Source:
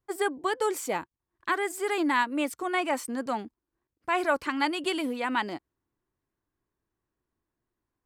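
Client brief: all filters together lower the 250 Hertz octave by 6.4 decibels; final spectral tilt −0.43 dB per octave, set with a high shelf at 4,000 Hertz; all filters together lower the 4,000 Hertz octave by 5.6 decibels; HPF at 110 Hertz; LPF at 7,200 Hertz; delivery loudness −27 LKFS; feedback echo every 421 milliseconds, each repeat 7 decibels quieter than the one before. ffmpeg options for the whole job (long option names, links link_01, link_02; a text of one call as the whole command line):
ffmpeg -i in.wav -af "highpass=110,lowpass=7200,equalizer=frequency=250:width_type=o:gain=-8.5,highshelf=frequency=4000:gain=-5,equalizer=frequency=4000:width_type=o:gain=-5,aecho=1:1:421|842|1263|1684|2105:0.447|0.201|0.0905|0.0407|0.0183,volume=4.5dB" out.wav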